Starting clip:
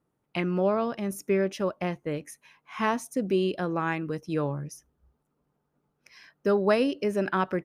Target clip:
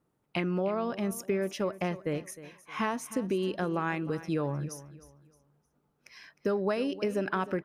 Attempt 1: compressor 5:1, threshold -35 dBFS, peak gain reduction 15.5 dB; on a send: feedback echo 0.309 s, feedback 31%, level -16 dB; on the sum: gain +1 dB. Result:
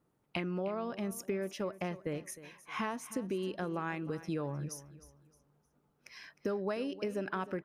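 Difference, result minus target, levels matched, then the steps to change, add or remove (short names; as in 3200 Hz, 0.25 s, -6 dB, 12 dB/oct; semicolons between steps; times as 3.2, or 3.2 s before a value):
compressor: peak gain reduction +6 dB
change: compressor 5:1, threshold -27.5 dBFS, peak gain reduction 9.5 dB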